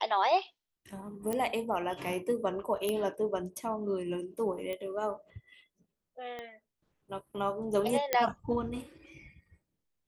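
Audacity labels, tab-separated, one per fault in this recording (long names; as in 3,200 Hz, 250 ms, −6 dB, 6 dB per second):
1.330000	1.330000	click −20 dBFS
2.890000	2.890000	click −19 dBFS
4.730000	4.730000	click −25 dBFS
6.390000	6.390000	click −27 dBFS
8.130000	8.130000	click −11 dBFS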